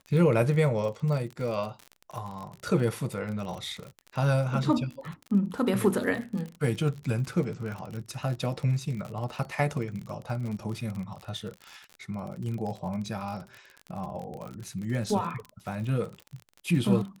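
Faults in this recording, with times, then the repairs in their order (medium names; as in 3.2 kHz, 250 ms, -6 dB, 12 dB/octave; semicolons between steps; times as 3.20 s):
crackle 49 per s -34 dBFS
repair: de-click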